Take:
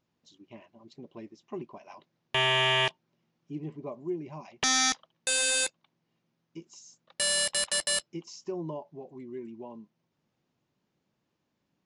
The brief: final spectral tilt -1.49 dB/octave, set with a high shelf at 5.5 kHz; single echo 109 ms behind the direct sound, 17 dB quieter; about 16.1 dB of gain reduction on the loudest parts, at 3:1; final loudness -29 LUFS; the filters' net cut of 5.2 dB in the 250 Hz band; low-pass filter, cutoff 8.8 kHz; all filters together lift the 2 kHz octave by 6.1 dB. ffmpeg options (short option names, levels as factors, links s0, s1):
-af "lowpass=8800,equalizer=f=250:t=o:g=-8.5,equalizer=f=2000:t=o:g=7,highshelf=f=5500:g=4,acompressor=threshold=0.00794:ratio=3,aecho=1:1:109:0.141,volume=3.76"